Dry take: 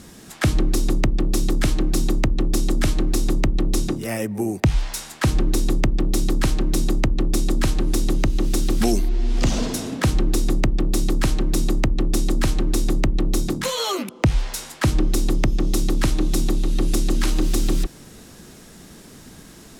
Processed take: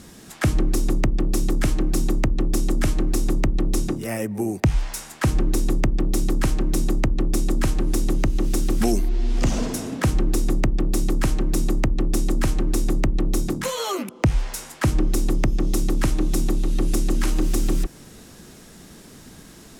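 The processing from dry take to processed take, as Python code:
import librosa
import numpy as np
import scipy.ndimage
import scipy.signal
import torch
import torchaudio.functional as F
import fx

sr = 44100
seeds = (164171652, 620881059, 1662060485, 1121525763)

y = fx.dynamic_eq(x, sr, hz=3900.0, q=1.6, threshold_db=-45.0, ratio=4.0, max_db=-6)
y = F.gain(torch.from_numpy(y), -1.0).numpy()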